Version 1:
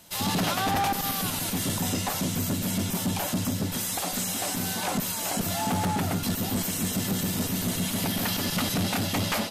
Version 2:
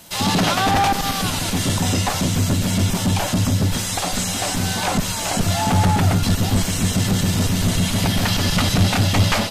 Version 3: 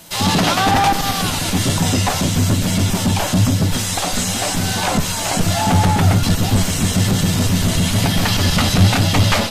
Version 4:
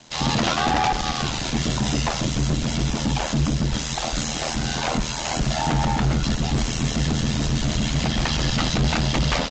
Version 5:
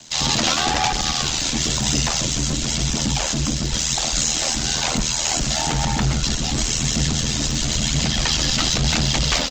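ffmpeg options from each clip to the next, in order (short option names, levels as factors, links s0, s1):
-filter_complex "[0:a]acrossover=split=8900[s0][s1];[s1]acompressor=threshold=0.00398:ratio=4:attack=1:release=60[s2];[s0][s2]amix=inputs=2:normalize=0,asubboost=boost=4:cutoff=110,volume=2.66"
-af "flanger=delay=6.1:depth=7.7:regen=67:speed=1.1:shape=sinusoidal,volume=2.24"
-af "aeval=exprs='val(0)*sin(2*PI*40*n/s)':c=same,aresample=16000,volume=4.22,asoftclip=hard,volume=0.237,aresample=44100,volume=0.75"
-filter_complex "[0:a]aphaser=in_gain=1:out_gain=1:delay=4:decay=0.27:speed=1:type=triangular,acrossover=split=580|1100[s0][s1][s2];[s2]crystalizer=i=3.5:c=0[s3];[s0][s1][s3]amix=inputs=3:normalize=0,volume=0.841"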